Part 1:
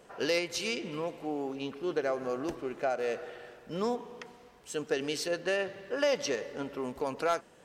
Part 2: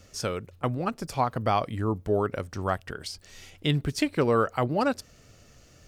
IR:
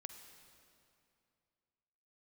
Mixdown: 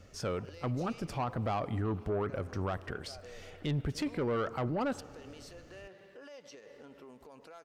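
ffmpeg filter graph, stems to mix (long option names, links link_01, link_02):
-filter_complex "[0:a]acompressor=threshold=-33dB:ratio=6,alimiter=level_in=8.5dB:limit=-24dB:level=0:latency=1:release=100,volume=-8.5dB,adelay=250,volume=-10dB[link_01];[1:a]highshelf=frequency=3600:gain=-11.5,volume=-2dB,asplit=2[link_02][link_03];[link_03]volume=-9.5dB[link_04];[2:a]atrim=start_sample=2205[link_05];[link_04][link_05]afir=irnorm=-1:irlink=0[link_06];[link_01][link_02][link_06]amix=inputs=3:normalize=0,asoftclip=type=tanh:threshold=-21.5dB,alimiter=level_in=3dB:limit=-24dB:level=0:latency=1:release=11,volume=-3dB"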